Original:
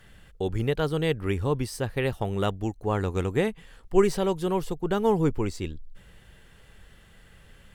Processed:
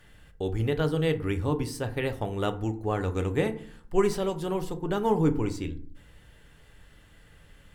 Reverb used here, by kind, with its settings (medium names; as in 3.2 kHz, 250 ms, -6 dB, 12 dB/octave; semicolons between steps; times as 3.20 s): FDN reverb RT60 0.5 s, low-frequency decay 1.5×, high-frequency decay 0.5×, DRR 7 dB; trim -2.5 dB